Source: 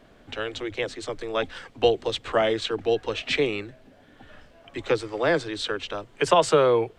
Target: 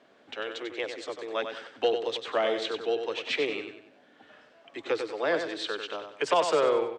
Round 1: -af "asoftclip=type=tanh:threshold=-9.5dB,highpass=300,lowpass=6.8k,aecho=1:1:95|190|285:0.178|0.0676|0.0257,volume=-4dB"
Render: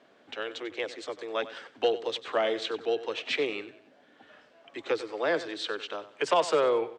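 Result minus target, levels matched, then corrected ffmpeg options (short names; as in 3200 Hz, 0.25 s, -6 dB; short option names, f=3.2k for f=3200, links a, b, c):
echo-to-direct -7.5 dB
-af "asoftclip=type=tanh:threshold=-9.5dB,highpass=300,lowpass=6.8k,aecho=1:1:95|190|285|380:0.422|0.16|0.0609|0.0231,volume=-4dB"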